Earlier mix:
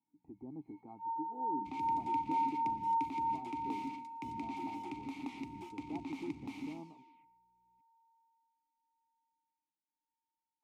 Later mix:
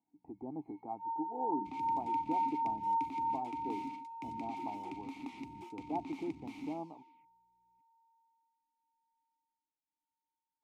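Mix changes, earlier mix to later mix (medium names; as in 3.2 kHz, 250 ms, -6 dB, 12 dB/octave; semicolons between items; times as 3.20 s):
speech: add peaking EQ 710 Hz +13.5 dB 1.6 oct; reverb: off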